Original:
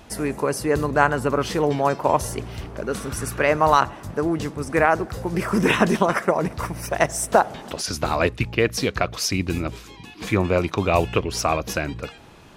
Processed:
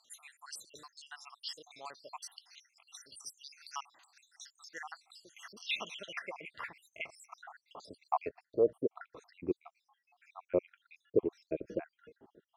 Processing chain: random spectral dropouts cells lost 74%; band-pass sweep 4900 Hz -> 380 Hz, 5.36–9.25; gain -2 dB

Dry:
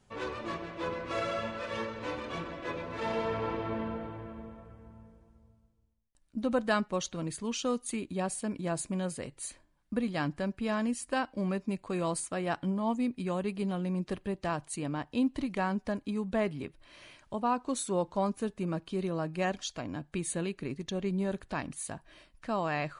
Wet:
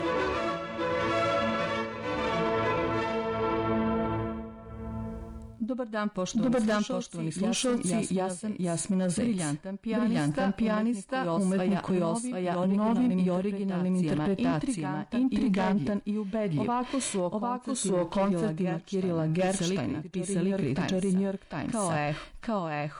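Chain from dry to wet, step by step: on a send: reverse echo 0.748 s -5.5 dB; on the sum: tremolo 0.77 Hz, depth 87%; added harmonics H 5 -7 dB, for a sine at -16 dBFS; in parallel at +0.5 dB: compressor, threshold -44 dBFS, peak gain reduction 21 dB; on the sum: harmonic-percussive split percussive -10 dB; limiter -26 dBFS, peak gain reduction 10.5 dB; gain +5.5 dB

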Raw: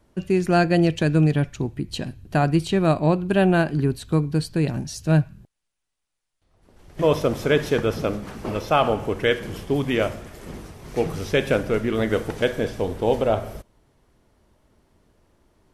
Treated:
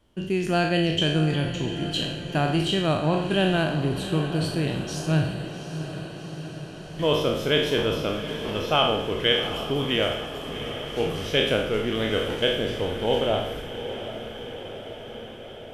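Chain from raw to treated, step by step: spectral trails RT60 0.72 s; bell 3100 Hz +13.5 dB 0.33 oct; diffused feedback echo 0.755 s, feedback 69%, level -11 dB; gain -5.5 dB

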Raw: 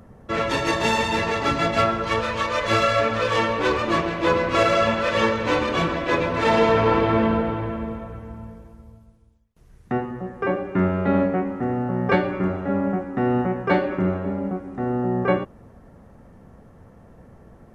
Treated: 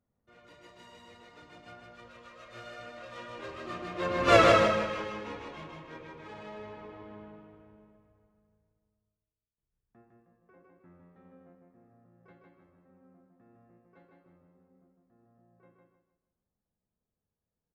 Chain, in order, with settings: Doppler pass-by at 4.37, 20 m/s, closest 1.5 m; on a send: feedback echo 0.156 s, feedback 35%, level -3 dB

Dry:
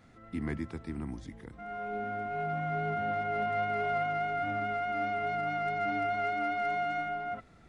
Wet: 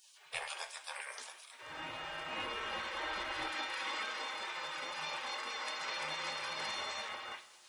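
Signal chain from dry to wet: spectral gate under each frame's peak -30 dB weak; HPF 120 Hz 6 dB/oct, from 3.48 s 840 Hz; reverb, pre-delay 3 ms, DRR 7 dB; gain +16.5 dB

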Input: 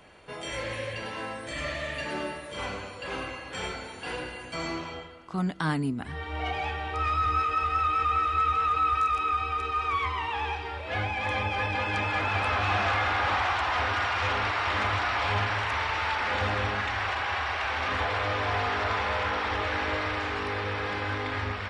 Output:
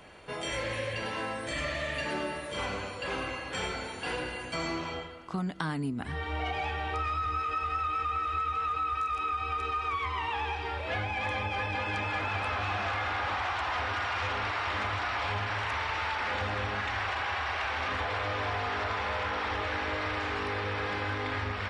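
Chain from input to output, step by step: compressor, threshold -31 dBFS, peak gain reduction 9 dB; gain +2 dB

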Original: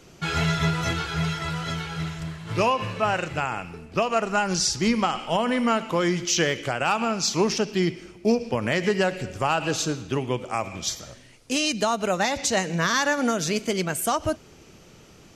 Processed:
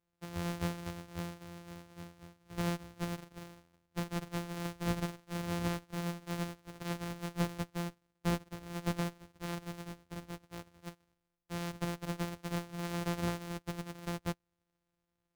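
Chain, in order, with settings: sample sorter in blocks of 256 samples; one-sided clip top -28.5 dBFS, bottom -14 dBFS; upward expander 2.5:1, over -41 dBFS; gain -5.5 dB

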